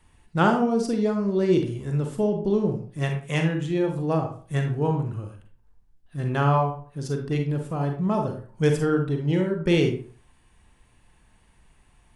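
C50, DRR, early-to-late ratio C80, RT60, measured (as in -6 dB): 6.5 dB, 3.5 dB, 11.5 dB, 0.40 s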